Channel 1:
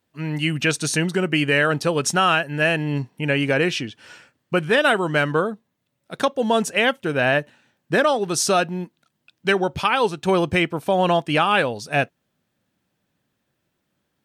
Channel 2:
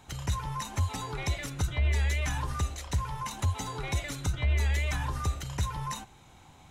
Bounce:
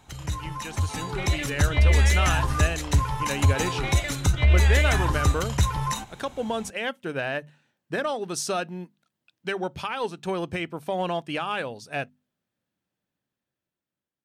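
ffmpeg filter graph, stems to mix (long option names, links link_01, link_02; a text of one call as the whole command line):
ffmpeg -i stem1.wav -i stem2.wav -filter_complex "[0:a]bandreject=frequency=50:width_type=h:width=6,bandreject=frequency=100:width_type=h:width=6,bandreject=frequency=150:width_type=h:width=6,bandreject=frequency=200:width_type=h:width=6,bandreject=frequency=250:width_type=h:width=6,dynaudnorm=framelen=780:gausssize=9:maxgain=11.5dB,alimiter=limit=-6.5dB:level=0:latency=1:release=129,volume=-18.5dB[link_01];[1:a]volume=1dB[link_02];[link_01][link_02]amix=inputs=2:normalize=0,dynaudnorm=framelen=330:gausssize=7:maxgain=7.5dB,aeval=exprs='0.355*(cos(1*acos(clip(val(0)/0.355,-1,1)))-cos(1*PI/2))+0.00794*(cos(7*acos(clip(val(0)/0.355,-1,1)))-cos(7*PI/2))':channel_layout=same" out.wav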